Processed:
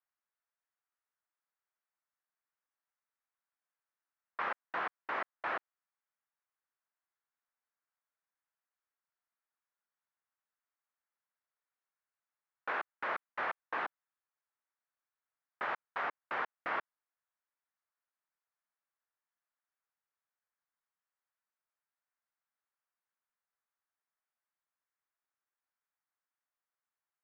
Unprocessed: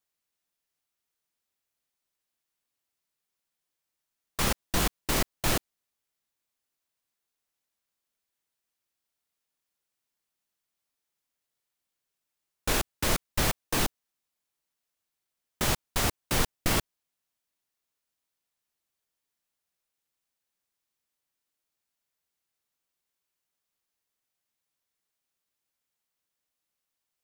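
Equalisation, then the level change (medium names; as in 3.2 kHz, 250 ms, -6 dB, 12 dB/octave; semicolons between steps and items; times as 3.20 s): high-pass 940 Hz 12 dB/octave; four-pole ladder low-pass 2.1 kHz, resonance 30%; tilt shelf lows +4 dB, about 1.3 kHz; +4.0 dB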